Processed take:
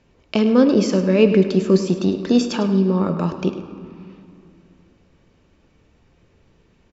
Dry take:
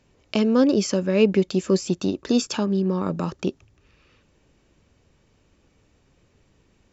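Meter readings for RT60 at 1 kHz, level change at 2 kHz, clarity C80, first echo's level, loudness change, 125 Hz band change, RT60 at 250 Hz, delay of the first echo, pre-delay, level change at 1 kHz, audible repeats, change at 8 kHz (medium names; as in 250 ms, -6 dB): 2.5 s, +3.0 dB, 9.0 dB, -12.5 dB, +4.5 dB, +5.5 dB, 3.0 s, 103 ms, 4 ms, +4.0 dB, 1, no reading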